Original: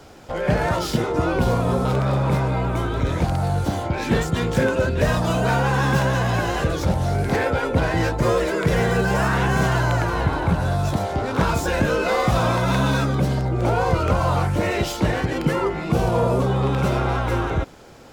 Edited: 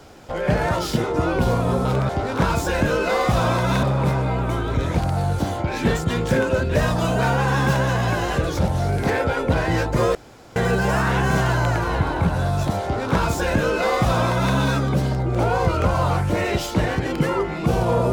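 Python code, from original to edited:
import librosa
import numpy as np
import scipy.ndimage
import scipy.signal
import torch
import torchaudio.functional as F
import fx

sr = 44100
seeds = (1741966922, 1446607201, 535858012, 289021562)

y = fx.edit(x, sr, fx.room_tone_fill(start_s=8.41, length_s=0.41),
    fx.duplicate(start_s=11.08, length_s=1.74, to_s=2.09), tone=tone)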